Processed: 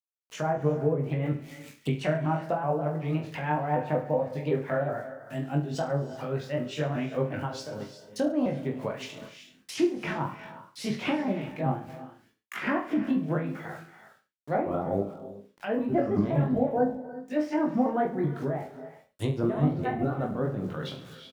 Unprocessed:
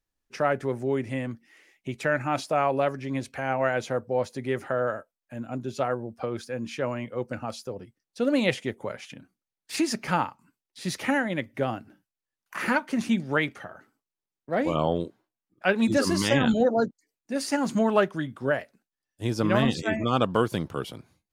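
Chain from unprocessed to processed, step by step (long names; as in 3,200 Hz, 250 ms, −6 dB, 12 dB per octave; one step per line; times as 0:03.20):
pitch shifter swept by a sawtooth +3.5 semitones, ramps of 188 ms
treble cut that deepens with the level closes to 920 Hz, closed at −24 dBFS
parametric band 140 Hz +9 dB 0.42 octaves
mains-hum notches 60/120/180 Hz
brickwall limiter −19.5 dBFS, peak gain reduction 10 dB
centre clipping without the shift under −56 dBFS
shaped tremolo triangle 4.9 Hz, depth 70%
reverse bouncing-ball delay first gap 20 ms, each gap 1.15×, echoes 5
on a send at −14 dB: convolution reverb, pre-delay 3 ms
on the sum: one half of a high-frequency compander encoder only
level +2.5 dB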